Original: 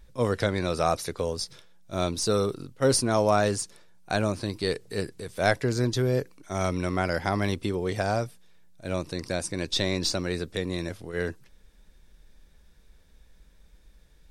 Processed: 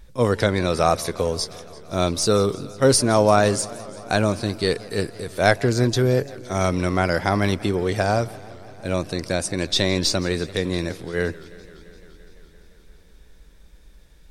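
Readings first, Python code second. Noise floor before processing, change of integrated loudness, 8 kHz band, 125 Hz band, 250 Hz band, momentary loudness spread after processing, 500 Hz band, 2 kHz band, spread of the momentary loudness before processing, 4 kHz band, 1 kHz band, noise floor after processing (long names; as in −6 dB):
−57 dBFS, +6.0 dB, +6.0 dB, +6.0 dB, +6.0 dB, 11 LU, +6.0 dB, +6.0 dB, 10 LU, +6.0 dB, +6.0 dB, −49 dBFS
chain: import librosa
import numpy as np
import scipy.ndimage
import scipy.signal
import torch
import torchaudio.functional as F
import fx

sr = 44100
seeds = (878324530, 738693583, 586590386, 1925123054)

y = fx.echo_warbled(x, sr, ms=171, feedback_pct=78, rate_hz=2.8, cents=192, wet_db=-20.5)
y = y * 10.0 ** (6.0 / 20.0)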